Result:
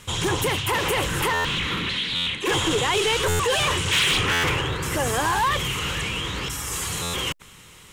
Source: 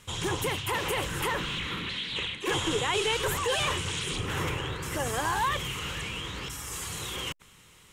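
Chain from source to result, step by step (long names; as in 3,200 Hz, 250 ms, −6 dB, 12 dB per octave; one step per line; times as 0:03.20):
0:03.91–0:04.61: parametric band 2,100 Hz +14.5 dB → +3 dB 2.6 octaves
soft clipping −24.5 dBFS, distortion −14 dB
buffer that repeats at 0:01.33/0:02.15/0:03.28/0:04.32/0:07.02, samples 512, times 9
level +8.5 dB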